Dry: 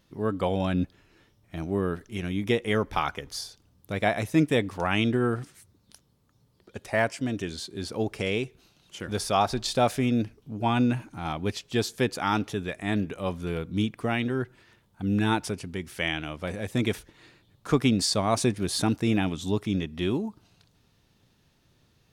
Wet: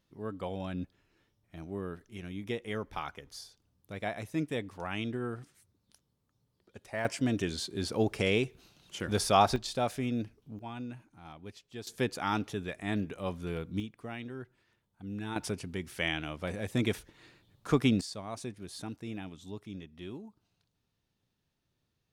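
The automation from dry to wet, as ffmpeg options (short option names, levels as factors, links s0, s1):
-af "asetnsamples=n=441:p=0,asendcmd='7.05 volume volume 0dB;9.56 volume volume -8dB;10.59 volume volume -17.5dB;11.87 volume volume -5.5dB;13.8 volume volume -14dB;15.36 volume volume -3.5dB;18.01 volume volume -16dB',volume=0.282"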